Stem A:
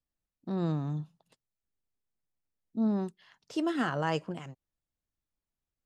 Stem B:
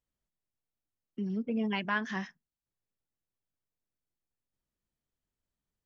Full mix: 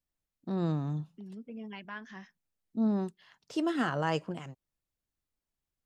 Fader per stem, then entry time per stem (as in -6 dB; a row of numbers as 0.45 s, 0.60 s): 0.0 dB, -11.5 dB; 0.00 s, 0.00 s